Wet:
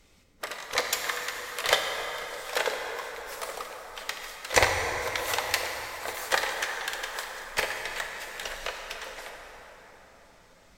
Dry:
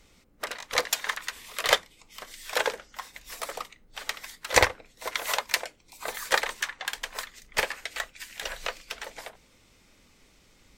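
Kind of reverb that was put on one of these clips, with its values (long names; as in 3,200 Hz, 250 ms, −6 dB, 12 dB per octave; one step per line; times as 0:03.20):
dense smooth reverb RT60 4.8 s, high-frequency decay 0.5×, DRR 1.5 dB
level −2 dB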